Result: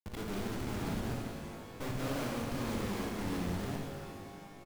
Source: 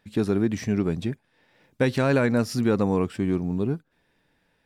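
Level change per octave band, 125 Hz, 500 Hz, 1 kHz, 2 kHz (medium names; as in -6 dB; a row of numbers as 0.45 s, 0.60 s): -11.5 dB, -15.0 dB, -7.5 dB, -11.0 dB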